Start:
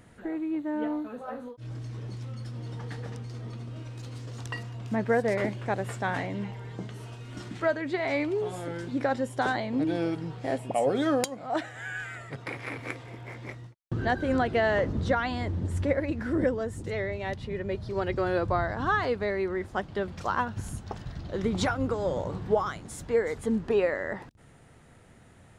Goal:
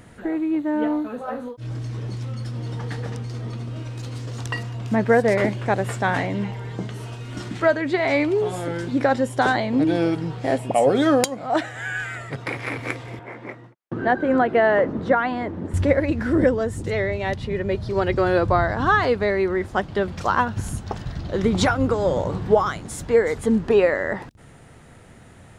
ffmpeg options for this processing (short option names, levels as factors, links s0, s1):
-filter_complex "[0:a]asettb=1/sr,asplit=3[s0][s1][s2];[s0]atrim=end=13.194[s3];[s1]atrim=start=13.19:end=15.74,asetpts=PTS-STARTPTS,afade=t=in:d=0.004:c=qsin,afade=t=out:st=2.546:d=0.004:c=qsin,acrossover=split=170 2300:gain=0.1 1 0.178[s4][s5][s6];[s4][s5][s6]amix=inputs=3:normalize=0[s7];[s2]atrim=start=15.736[s8];[s3][s7]acrossfade=d=0.004:c1=hsin:c2=qsin[s9];[s9][s8]acrossfade=d=0.004:c1=qsin:c2=hsin,volume=2.51"